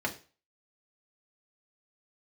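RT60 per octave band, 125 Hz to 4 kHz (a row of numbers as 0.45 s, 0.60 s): 0.35 s, 0.30 s, 0.35 s, 0.35 s, 0.35 s, 0.35 s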